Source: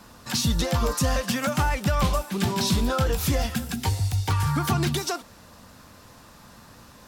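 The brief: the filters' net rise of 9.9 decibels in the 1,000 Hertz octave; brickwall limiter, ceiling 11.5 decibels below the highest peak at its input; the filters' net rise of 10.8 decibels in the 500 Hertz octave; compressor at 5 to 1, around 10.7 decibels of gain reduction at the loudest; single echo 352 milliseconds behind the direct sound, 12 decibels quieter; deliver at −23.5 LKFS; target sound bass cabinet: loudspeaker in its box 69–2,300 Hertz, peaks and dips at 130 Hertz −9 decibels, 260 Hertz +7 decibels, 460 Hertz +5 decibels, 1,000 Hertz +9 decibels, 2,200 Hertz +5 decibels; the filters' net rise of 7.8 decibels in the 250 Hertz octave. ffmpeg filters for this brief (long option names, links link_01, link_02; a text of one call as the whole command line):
ffmpeg -i in.wav -af "equalizer=frequency=250:width_type=o:gain=4,equalizer=frequency=500:width_type=o:gain=7,equalizer=frequency=1000:width_type=o:gain=3.5,acompressor=threshold=-28dB:ratio=5,alimiter=level_in=4dB:limit=-24dB:level=0:latency=1,volume=-4dB,highpass=frequency=69:width=0.5412,highpass=frequency=69:width=1.3066,equalizer=frequency=130:width_type=q:width=4:gain=-9,equalizer=frequency=260:width_type=q:width=4:gain=7,equalizer=frequency=460:width_type=q:width=4:gain=5,equalizer=frequency=1000:width_type=q:width=4:gain=9,equalizer=frequency=2200:width_type=q:width=4:gain=5,lowpass=frequency=2300:width=0.5412,lowpass=frequency=2300:width=1.3066,aecho=1:1:352:0.251,volume=11.5dB" out.wav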